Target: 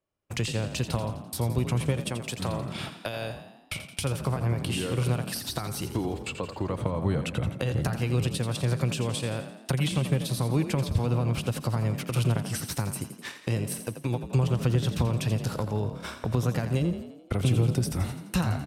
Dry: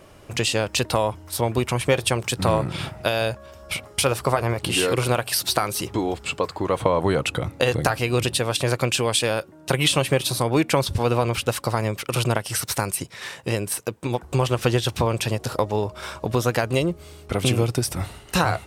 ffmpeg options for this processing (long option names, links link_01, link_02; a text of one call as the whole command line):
ffmpeg -i in.wav -filter_complex "[0:a]asettb=1/sr,asplit=3[link_01][link_02][link_03];[link_01]atrim=end=2.004[link_04];[link_02]atrim=start=2:end=3.35,asetpts=PTS-STARTPTS,afade=type=in:duration=0.004:curve=qsin,afade=type=out:start_time=1.346:duration=0.004:curve=qsin,lowshelf=frequency=180:gain=-11[link_05];[link_03]atrim=start=3.346[link_06];[link_04][link_05]acrossfade=duration=0.004:curve1=hsin:curve2=qsin[link_07];[link_07][link_06]acrossfade=duration=0.004:curve1=qsin:curve2=hsin,agate=range=-38dB:threshold=-33dB:ratio=16:detection=peak,acrossover=split=230[link_08][link_09];[link_09]acompressor=threshold=-34dB:ratio=4[link_10];[link_08][link_10]amix=inputs=2:normalize=0,asplit=7[link_11][link_12][link_13][link_14][link_15][link_16][link_17];[link_12]adelay=85,afreqshift=35,volume=-10dB[link_18];[link_13]adelay=170,afreqshift=70,volume=-15.2dB[link_19];[link_14]adelay=255,afreqshift=105,volume=-20.4dB[link_20];[link_15]adelay=340,afreqshift=140,volume=-25.6dB[link_21];[link_16]adelay=425,afreqshift=175,volume=-30.8dB[link_22];[link_17]adelay=510,afreqshift=210,volume=-36dB[link_23];[link_11][link_18][link_19][link_20][link_21][link_22][link_23]amix=inputs=7:normalize=0" out.wav